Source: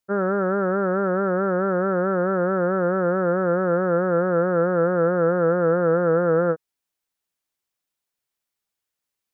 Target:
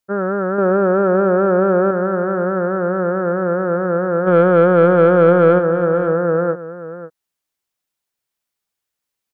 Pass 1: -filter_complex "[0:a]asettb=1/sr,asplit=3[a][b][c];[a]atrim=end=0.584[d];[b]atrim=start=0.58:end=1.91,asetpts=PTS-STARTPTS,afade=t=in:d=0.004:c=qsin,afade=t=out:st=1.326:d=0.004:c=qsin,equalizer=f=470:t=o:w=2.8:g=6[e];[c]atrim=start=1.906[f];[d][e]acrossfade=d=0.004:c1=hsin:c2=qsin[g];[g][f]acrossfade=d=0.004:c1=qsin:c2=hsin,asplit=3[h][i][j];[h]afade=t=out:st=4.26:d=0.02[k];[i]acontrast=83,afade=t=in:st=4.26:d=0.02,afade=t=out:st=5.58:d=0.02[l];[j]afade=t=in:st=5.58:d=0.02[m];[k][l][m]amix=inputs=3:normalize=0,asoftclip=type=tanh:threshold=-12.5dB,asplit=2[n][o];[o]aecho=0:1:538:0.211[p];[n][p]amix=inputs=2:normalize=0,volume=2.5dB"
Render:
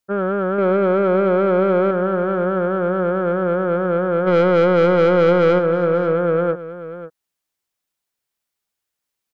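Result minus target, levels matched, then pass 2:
soft clip: distortion +18 dB
-filter_complex "[0:a]asettb=1/sr,asplit=3[a][b][c];[a]atrim=end=0.584[d];[b]atrim=start=0.58:end=1.91,asetpts=PTS-STARTPTS,afade=t=in:d=0.004:c=qsin,afade=t=out:st=1.326:d=0.004:c=qsin,equalizer=f=470:t=o:w=2.8:g=6[e];[c]atrim=start=1.906[f];[d][e]acrossfade=d=0.004:c1=hsin:c2=qsin[g];[g][f]acrossfade=d=0.004:c1=qsin:c2=hsin,asplit=3[h][i][j];[h]afade=t=out:st=4.26:d=0.02[k];[i]acontrast=83,afade=t=in:st=4.26:d=0.02,afade=t=out:st=5.58:d=0.02[l];[j]afade=t=in:st=5.58:d=0.02[m];[k][l][m]amix=inputs=3:normalize=0,asoftclip=type=tanh:threshold=-1dB,asplit=2[n][o];[o]aecho=0:1:538:0.211[p];[n][p]amix=inputs=2:normalize=0,volume=2.5dB"

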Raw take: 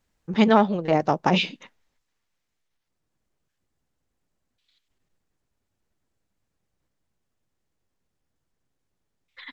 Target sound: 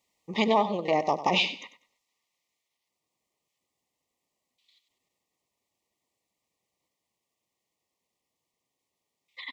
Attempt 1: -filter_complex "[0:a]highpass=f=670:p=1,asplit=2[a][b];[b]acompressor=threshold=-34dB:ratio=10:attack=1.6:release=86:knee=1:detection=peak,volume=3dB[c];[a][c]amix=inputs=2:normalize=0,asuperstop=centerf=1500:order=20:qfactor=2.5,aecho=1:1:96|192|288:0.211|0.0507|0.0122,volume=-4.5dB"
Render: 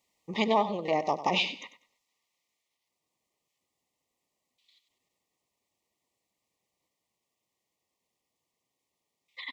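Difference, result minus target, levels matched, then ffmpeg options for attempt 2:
compressor: peak gain reduction +9 dB
-filter_complex "[0:a]highpass=f=670:p=1,asplit=2[a][b];[b]acompressor=threshold=-24dB:ratio=10:attack=1.6:release=86:knee=1:detection=peak,volume=3dB[c];[a][c]amix=inputs=2:normalize=0,asuperstop=centerf=1500:order=20:qfactor=2.5,aecho=1:1:96|192|288:0.211|0.0507|0.0122,volume=-4.5dB"

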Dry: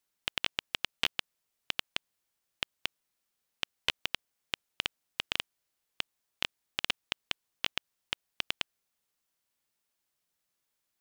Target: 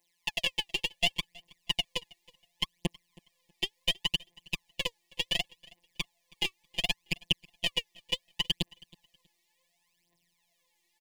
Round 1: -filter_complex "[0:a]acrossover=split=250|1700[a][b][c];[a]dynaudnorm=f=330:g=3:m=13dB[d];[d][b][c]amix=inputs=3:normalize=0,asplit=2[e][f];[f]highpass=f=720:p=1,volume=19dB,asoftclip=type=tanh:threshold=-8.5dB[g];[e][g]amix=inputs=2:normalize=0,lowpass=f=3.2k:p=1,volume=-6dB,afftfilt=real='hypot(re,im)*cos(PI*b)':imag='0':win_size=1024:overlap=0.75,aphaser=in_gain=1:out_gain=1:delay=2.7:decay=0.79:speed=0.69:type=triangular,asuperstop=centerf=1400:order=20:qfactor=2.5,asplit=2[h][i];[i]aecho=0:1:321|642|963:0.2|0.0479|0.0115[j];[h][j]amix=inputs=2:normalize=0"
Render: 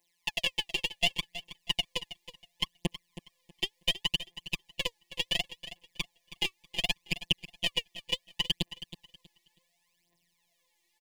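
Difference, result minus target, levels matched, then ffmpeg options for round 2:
echo-to-direct +6.5 dB
-filter_complex "[0:a]acrossover=split=250|1700[a][b][c];[a]dynaudnorm=f=330:g=3:m=13dB[d];[d][b][c]amix=inputs=3:normalize=0,asplit=2[e][f];[f]highpass=f=720:p=1,volume=19dB,asoftclip=type=tanh:threshold=-8.5dB[g];[e][g]amix=inputs=2:normalize=0,lowpass=f=3.2k:p=1,volume=-6dB,afftfilt=real='hypot(re,im)*cos(PI*b)':imag='0':win_size=1024:overlap=0.75,aphaser=in_gain=1:out_gain=1:delay=2.7:decay=0.79:speed=0.69:type=triangular,asuperstop=centerf=1400:order=20:qfactor=2.5,asplit=2[h][i];[i]aecho=0:1:321|642:0.0596|0.0143[j];[h][j]amix=inputs=2:normalize=0"

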